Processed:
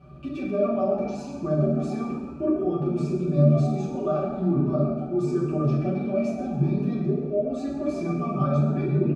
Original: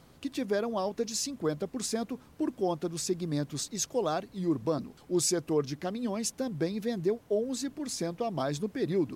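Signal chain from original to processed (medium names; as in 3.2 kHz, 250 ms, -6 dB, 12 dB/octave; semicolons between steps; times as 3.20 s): comb 5.2 ms, depth 94%; in parallel at -2 dB: level held to a coarse grid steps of 20 dB; on the sum: peak limiter -21.5 dBFS, peak gain reduction 13 dB; pitch-class resonator D, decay 0.1 s; frequency-shifting echo 133 ms, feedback 52%, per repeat +77 Hz, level -14 dB; reverberation RT60 0.95 s, pre-delay 4 ms, DRR -4.5 dB; trim +8.5 dB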